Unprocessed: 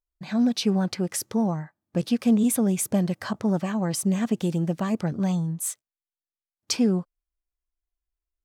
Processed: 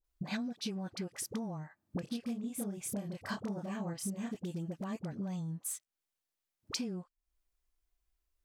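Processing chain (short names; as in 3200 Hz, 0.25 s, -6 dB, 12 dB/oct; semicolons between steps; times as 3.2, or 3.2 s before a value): 2–4.35 doubler 30 ms -3 dB; compressor 16:1, threshold -41 dBFS, peak gain reduction 29 dB; dispersion highs, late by 44 ms, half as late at 730 Hz; gain +5.5 dB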